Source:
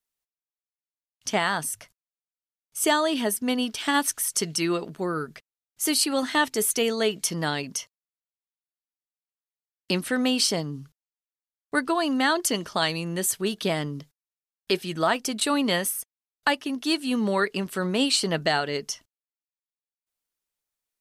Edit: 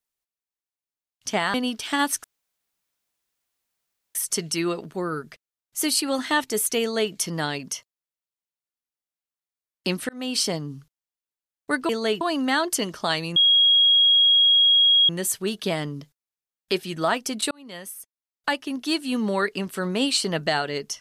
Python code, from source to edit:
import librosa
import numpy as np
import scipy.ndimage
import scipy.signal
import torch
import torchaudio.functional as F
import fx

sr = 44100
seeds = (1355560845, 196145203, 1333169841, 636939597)

y = fx.edit(x, sr, fx.cut(start_s=1.54, length_s=1.95),
    fx.insert_room_tone(at_s=4.19, length_s=1.91),
    fx.duplicate(start_s=6.85, length_s=0.32, to_s=11.93),
    fx.fade_in_span(start_s=10.13, length_s=0.34),
    fx.insert_tone(at_s=13.08, length_s=1.73, hz=3290.0, db=-13.5),
    fx.fade_in_span(start_s=15.5, length_s=1.22), tone=tone)